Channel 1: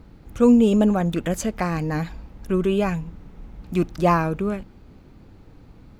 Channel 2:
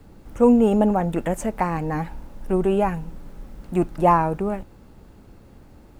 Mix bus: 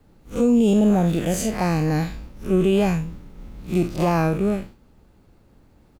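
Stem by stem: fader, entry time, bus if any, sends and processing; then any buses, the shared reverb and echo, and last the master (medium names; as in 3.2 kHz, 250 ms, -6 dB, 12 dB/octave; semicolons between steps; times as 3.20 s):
+2.5 dB, 0.00 s, no send, spectral blur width 106 ms; expander -37 dBFS; treble shelf 2.7 kHz +8.5 dB
-7.5 dB, 0.5 ms, no send, none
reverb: none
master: peak limiter -10.5 dBFS, peak gain reduction 8 dB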